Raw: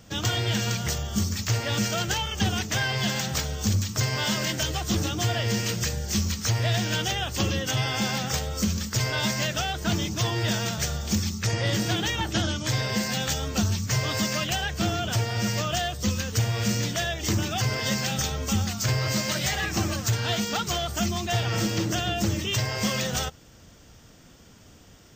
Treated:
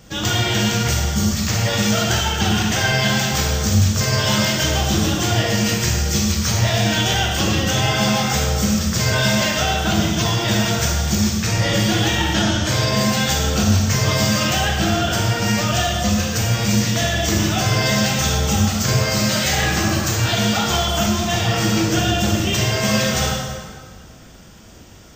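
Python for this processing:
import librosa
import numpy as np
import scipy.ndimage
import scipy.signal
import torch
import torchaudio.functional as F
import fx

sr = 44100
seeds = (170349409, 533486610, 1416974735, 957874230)

y = fx.rev_plate(x, sr, seeds[0], rt60_s=1.8, hf_ratio=0.75, predelay_ms=0, drr_db=-3.5)
y = F.gain(torch.from_numpy(y), 3.5).numpy()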